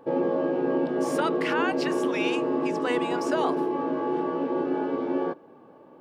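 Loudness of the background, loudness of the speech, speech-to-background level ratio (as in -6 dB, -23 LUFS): -27.0 LUFS, -32.0 LUFS, -5.0 dB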